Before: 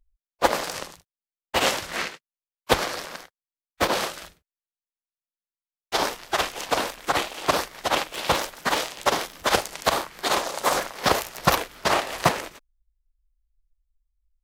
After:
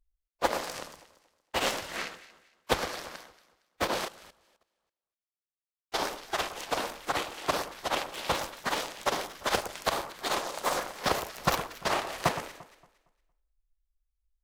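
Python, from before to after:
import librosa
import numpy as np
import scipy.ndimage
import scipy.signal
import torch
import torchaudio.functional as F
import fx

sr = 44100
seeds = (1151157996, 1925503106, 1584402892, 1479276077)

y = fx.tracing_dist(x, sr, depth_ms=0.032)
y = fx.echo_alternate(y, sr, ms=115, hz=1500.0, feedback_pct=52, wet_db=-11.0)
y = fx.level_steps(y, sr, step_db=15, at=(4.05, 5.94))
y = y * 10.0 ** (-7.0 / 20.0)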